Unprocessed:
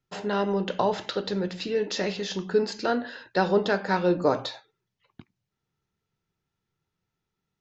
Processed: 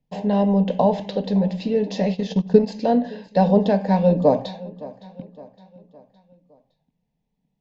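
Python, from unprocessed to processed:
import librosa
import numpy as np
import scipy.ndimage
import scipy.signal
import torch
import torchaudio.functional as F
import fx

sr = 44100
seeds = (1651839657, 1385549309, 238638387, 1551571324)

y = fx.fixed_phaser(x, sr, hz=360.0, stages=6)
y = fx.echo_feedback(y, sr, ms=563, feedback_pct=47, wet_db=-19)
y = fx.transient(y, sr, attack_db=6, sustain_db=-11, at=(2.14, 2.66), fade=0.02)
y = fx.lowpass(y, sr, hz=1200.0, slope=6)
y = fx.low_shelf(y, sr, hz=340.0, db=5.0)
y = y * librosa.db_to_amplitude(8.0)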